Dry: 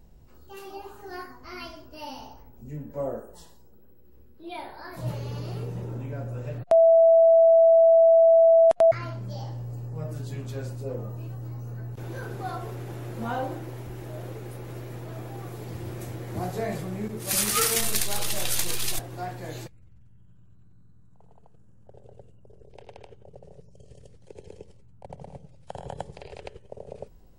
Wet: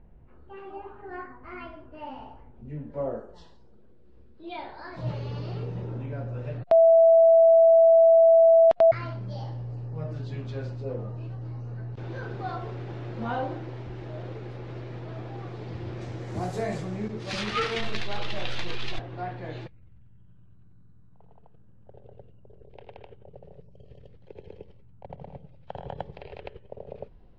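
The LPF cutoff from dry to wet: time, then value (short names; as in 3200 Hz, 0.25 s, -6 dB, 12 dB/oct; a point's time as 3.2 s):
LPF 24 dB/oct
2.11 s 2400 Hz
3.16 s 4600 Hz
15.93 s 4600 Hz
16.56 s 9400 Hz
17.52 s 3600 Hz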